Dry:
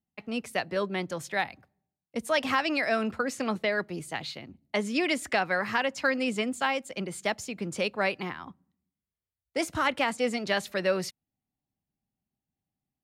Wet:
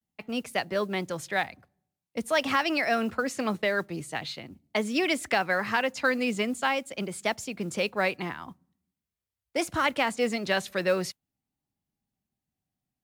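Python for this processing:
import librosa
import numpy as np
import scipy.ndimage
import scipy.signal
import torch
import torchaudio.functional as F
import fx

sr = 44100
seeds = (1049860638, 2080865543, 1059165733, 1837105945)

y = fx.mod_noise(x, sr, seeds[0], snr_db=31)
y = fx.vibrato(y, sr, rate_hz=0.45, depth_cents=61.0)
y = y * 10.0 ** (1.0 / 20.0)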